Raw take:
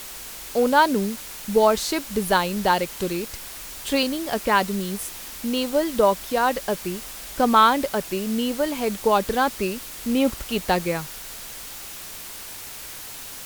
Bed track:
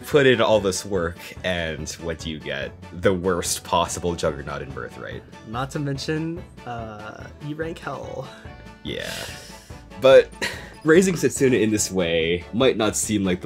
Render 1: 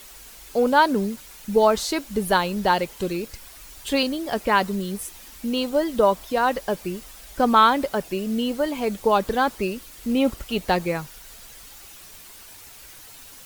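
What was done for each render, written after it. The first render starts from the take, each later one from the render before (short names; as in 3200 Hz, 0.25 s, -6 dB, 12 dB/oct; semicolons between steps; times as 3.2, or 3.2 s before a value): denoiser 9 dB, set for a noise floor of -38 dBFS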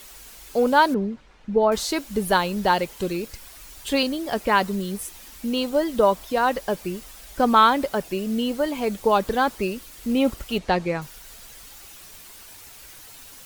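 0.94–1.72 tape spacing loss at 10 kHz 33 dB; 10.58–11.02 air absorption 72 m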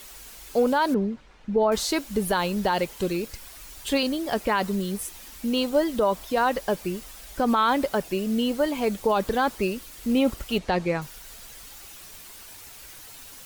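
limiter -13 dBFS, peak gain reduction 8.5 dB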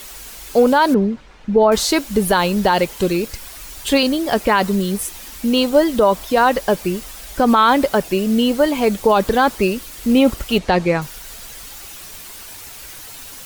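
gain +8.5 dB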